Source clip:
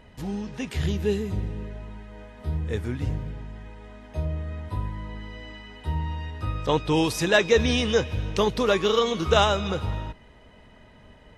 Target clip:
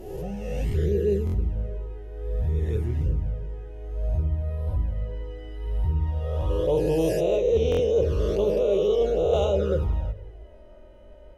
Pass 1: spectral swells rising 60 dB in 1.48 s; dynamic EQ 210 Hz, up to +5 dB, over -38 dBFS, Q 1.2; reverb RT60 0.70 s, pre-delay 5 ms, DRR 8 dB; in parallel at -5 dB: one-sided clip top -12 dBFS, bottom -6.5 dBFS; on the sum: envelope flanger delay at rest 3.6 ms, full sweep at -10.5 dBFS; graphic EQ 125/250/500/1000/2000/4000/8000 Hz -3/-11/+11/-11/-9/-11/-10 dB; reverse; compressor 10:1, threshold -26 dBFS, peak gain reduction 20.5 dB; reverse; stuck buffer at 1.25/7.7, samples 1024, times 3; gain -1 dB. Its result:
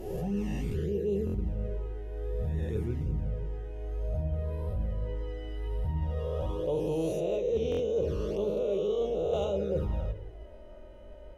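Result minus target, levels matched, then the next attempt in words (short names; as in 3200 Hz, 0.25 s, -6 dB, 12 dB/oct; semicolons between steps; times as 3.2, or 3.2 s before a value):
compressor: peak gain reduction +8.5 dB; 250 Hz band +3.5 dB
spectral swells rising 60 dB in 1.48 s; dynamic EQ 68 Hz, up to +5 dB, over -38 dBFS, Q 1.2; reverb RT60 0.70 s, pre-delay 5 ms, DRR 8 dB; in parallel at -5 dB: one-sided clip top -12 dBFS, bottom -6.5 dBFS; on the sum: envelope flanger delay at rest 3.6 ms, full sweep at -10.5 dBFS; graphic EQ 125/250/500/1000/2000/4000/8000 Hz -3/-11/+11/-11/-9/-11/-10 dB; reverse; compressor 10:1, threshold -17.5 dBFS, peak gain reduction 12 dB; reverse; stuck buffer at 1.25/7.7, samples 1024, times 3; gain -1 dB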